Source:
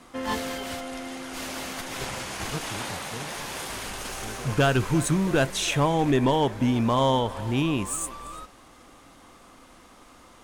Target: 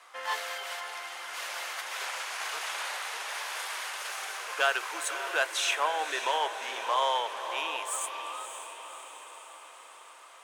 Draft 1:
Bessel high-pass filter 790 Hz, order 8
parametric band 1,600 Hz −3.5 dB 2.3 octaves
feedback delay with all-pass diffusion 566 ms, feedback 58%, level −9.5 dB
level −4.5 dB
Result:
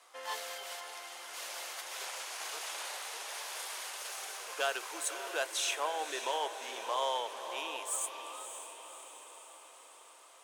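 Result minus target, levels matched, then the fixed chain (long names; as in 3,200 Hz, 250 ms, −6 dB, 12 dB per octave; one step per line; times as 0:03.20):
2,000 Hz band −3.0 dB
Bessel high-pass filter 790 Hz, order 8
parametric band 1,600 Hz +6 dB 2.3 octaves
feedback delay with all-pass diffusion 566 ms, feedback 58%, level −9.5 dB
level −4.5 dB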